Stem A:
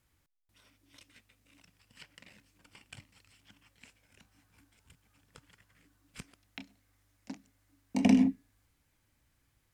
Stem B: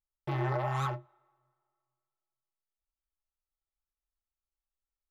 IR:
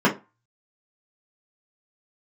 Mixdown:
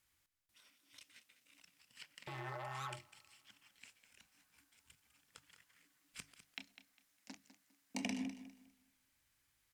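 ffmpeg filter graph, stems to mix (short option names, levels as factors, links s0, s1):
-filter_complex "[0:a]alimiter=limit=0.0944:level=0:latency=1:release=205,volume=0.473,asplit=2[s0][s1];[s1]volume=0.224[s2];[1:a]alimiter=level_in=2.37:limit=0.0631:level=0:latency=1:release=222,volume=0.422,adelay=2000,volume=0.668[s3];[s2]aecho=0:1:202|404|606|808:1|0.25|0.0625|0.0156[s4];[s0][s3][s4]amix=inputs=3:normalize=0,tiltshelf=f=970:g=-6.5,bandreject=f=50:t=h:w=6,bandreject=f=100:t=h:w=6,bandreject=f=150:t=h:w=6"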